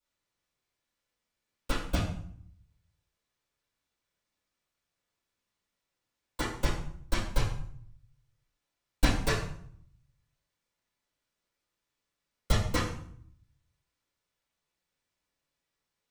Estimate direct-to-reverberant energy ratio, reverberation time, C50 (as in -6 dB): -10.5 dB, 0.60 s, 3.5 dB